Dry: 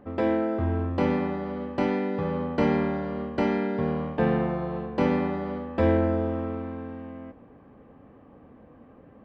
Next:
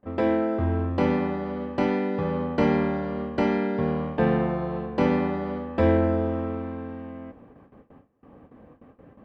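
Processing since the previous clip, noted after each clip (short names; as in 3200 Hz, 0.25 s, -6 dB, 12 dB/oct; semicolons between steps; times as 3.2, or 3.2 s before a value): gate with hold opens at -42 dBFS; gain +1.5 dB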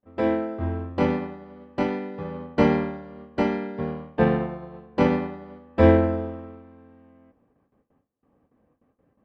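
upward expander 2.5:1, over -32 dBFS; gain +6 dB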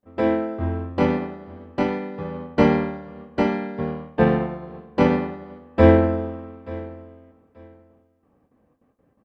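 feedback echo 0.883 s, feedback 20%, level -19.5 dB; gain +2.5 dB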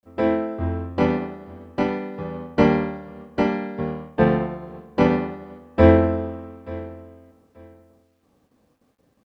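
bit-crush 12-bit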